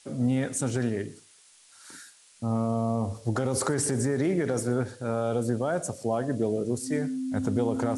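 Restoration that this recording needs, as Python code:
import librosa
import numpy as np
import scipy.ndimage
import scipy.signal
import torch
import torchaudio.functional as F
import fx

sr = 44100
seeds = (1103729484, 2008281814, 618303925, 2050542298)

y = fx.notch(x, sr, hz=260.0, q=30.0)
y = fx.noise_reduce(y, sr, print_start_s=1.22, print_end_s=1.72, reduce_db=18.0)
y = fx.fix_echo_inverse(y, sr, delay_ms=120, level_db=-22.5)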